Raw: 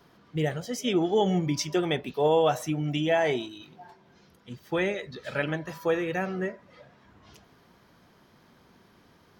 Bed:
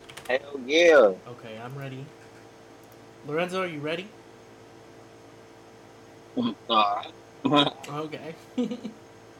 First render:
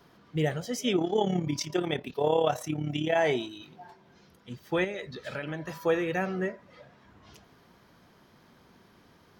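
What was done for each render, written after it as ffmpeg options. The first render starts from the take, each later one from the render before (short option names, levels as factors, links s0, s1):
-filter_complex "[0:a]asettb=1/sr,asplit=3[s0][s1][s2];[s0]atrim=end=0.964[s3];[s1]atrim=start=0.96:end=3.16,asetpts=PTS-STARTPTS,afade=t=in:d=0.004:c=qsin,afade=t=out:st=2.196:d=0.004:c=qsin,tremolo=f=35:d=0.667[s4];[s2]atrim=start=3.156[s5];[s3][s4]acrossfade=d=0.004:c1=hsin:c2=qsin[s6];[s6][s5]acrossfade=d=0.004:c1=qsin:c2=hsin,asettb=1/sr,asplit=3[s7][s8][s9];[s7]atrim=end=4.844[s10];[s8]atrim=start=4.84:end=5.71,asetpts=PTS-STARTPTS,afade=t=in:d=0.004:c=qsin,afade=t=out:st=0.866:d=0.004:c=qsin,acompressor=threshold=0.0282:ratio=5:attack=3.2:release=140:knee=1:detection=peak[s11];[s9]atrim=start=5.706[s12];[s10][s11]acrossfade=d=0.004:c1=hsin:c2=qsin[s13];[s13][s12]acrossfade=d=0.004:c1=qsin:c2=hsin"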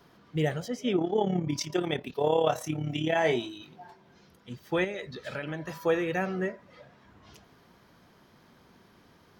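-filter_complex "[0:a]asettb=1/sr,asplit=3[s0][s1][s2];[s0]atrim=end=0.684[s3];[s1]atrim=start=0.68:end=1.5,asetpts=PTS-STARTPTS,afade=t=in:d=0.004:c=qsin,afade=t=out:st=0.816:d=0.004:c=qsin,lowpass=f=1900:p=1[s4];[s2]atrim=start=1.496[s5];[s3][s4]acrossfade=d=0.004:c1=hsin:c2=qsin[s6];[s6][s5]acrossfade=d=0.004:c1=qsin:c2=hsin,asettb=1/sr,asplit=3[s7][s8][s9];[s7]atrim=end=2.444[s10];[s8]atrim=start=2.44:end=3.53,asetpts=PTS-STARTPTS,afade=t=in:d=0.004:c=qsin,afade=t=out:st=1.086:d=0.004:c=qsin,asplit=2[s11][s12];[s12]adelay=25,volume=0.376[s13];[s11][s13]amix=inputs=2:normalize=0,atrim=end_sample=48069[s14];[s9]atrim=start=3.526[s15];[s10][s14]acrossfade=d=0.004:c1=hsin:c2=qsin[s16];[s16][s15]acrossfade=d=0.004:c1=qsin:c2=hsin"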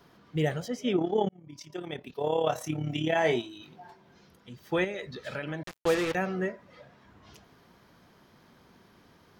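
-filter_complex "[0:a]asettb=1/sr,asplit=3[s0][s1][s2];[s0]atrim=end=3.414[s3];[s1]atrim=start=3.41:end=4.59,asetpts=PTS-STARTPTS,afade=t=in:d=0.004:c=qsin,afade=t=out:st=1.176:d=0.004:c=qsin,acompressor=threshold=0.00708:ratio=2:attack=3.2:release=140:knee=1:detection=peak[s4];[s2]atrim=start=4.586[s5];[s3][s4]acrossfade=d=0.004:c1=hsin:c2=qsin[s6];[s6][s5]acrossfade=d=0.004:c1=qsin:c2=hsin,asettb=1/sr,asplit=3[s7][s8][s9];[s7]atrim=end=5.634[s10];[s8]atrim=start=5.63:end=6.15,asetpts=PTS-STARTPTS,afade=t=in:d=0.004:c=qsin,afade=t=out:st=0.516:d=0.004:c=qsin,acrusher=bits=4:mix=0:aa=0.5[s11];[s9]atrim=start=6.146[s12];[s10][s11]acrossfade=d=0.004:c1=hsin:c2=qsin[s13];[s13][s12]acrossfade=d=0.004:c1=qsin:c2=hsin,asplit=2[s14][s15];[s14]atrim=end=1.29,asetpts=PTS-STARTPTS,afade=t=out:st=1.286:d=0.004:c=hsin[s16];[s15]atrim=start=1.29,asetpts=PTS-STARTPTS,afade=t=in:d=1.46[s17];[s16][s17]concat=n=2:v=0:a=1"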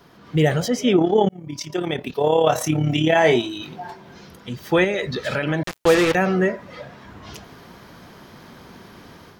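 -filter_complex "[0:a]dynaudnorm=f=160:g=3:m=2.51,asplit=2[s0][s1];[s1]alimiter=limit=0.0668:level=0:latency=1:release=38,volume=1.26[s2];[s0][s2]amix=inputs=2:normalize=0"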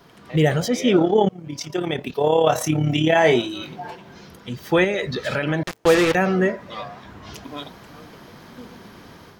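-filter_complex "[1:a]volume=0.2[s0];[0:a][s0]amix=inputs=2:normalize=0"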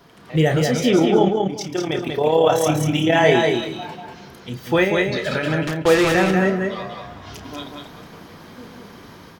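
-filter_complex "[0:a]asplit=2[s0][s1];[s1]adelay=31,volume=0.316[s2];[s0][s2]amix=inputs=2:normalize=0,asplit=2[s3][s4];[s4]aecho=0:1:191|382|573:0.631|0.139|0.0305[s5];[s3][s5]amix=inputs=2:normalize=0"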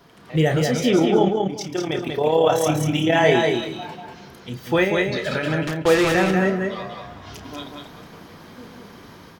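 -af "volume=0.841"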